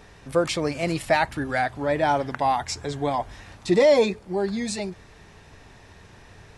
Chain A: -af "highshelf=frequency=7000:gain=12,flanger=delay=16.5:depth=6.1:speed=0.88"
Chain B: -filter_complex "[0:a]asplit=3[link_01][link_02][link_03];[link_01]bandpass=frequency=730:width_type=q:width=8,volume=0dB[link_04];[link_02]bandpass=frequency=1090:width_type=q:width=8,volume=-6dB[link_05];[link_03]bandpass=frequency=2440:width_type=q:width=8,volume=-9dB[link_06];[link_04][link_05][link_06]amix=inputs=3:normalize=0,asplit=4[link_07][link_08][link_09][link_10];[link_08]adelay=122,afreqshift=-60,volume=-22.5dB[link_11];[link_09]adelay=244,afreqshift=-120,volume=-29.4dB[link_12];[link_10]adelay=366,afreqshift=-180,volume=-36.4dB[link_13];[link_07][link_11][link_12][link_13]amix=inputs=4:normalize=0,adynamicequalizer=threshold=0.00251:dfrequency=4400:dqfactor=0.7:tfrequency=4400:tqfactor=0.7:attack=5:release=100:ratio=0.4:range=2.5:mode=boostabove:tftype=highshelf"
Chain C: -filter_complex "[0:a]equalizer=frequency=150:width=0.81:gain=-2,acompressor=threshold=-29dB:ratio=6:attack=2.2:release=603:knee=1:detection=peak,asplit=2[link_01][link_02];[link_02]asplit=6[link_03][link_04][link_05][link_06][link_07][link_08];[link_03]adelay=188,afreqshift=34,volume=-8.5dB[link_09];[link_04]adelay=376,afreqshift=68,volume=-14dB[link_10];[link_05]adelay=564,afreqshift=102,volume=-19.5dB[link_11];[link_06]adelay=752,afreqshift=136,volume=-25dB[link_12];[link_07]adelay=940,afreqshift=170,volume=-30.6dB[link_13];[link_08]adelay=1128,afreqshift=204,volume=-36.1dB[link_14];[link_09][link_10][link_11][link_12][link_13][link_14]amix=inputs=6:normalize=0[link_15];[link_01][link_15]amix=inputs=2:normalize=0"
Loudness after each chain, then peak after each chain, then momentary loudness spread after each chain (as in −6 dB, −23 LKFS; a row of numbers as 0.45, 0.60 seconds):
−26.5, −32.5, −35.5 LKFS; −9.5, −16.0, −19.0 dBFS; 9, 15, 15 LU